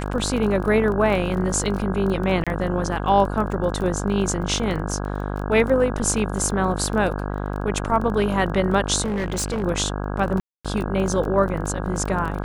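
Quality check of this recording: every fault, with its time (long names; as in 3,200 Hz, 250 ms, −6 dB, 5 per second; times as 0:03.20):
mains buzz 50 Hz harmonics 33 −27 dBFS
surface crackle 18 per second −27 dBFS
0:02.44–0:02.47: drop-out 26 ms
0:09.04–0:09.64: clipping −21 dBFS
0:10.40–0:10.65: drop-out 246 ms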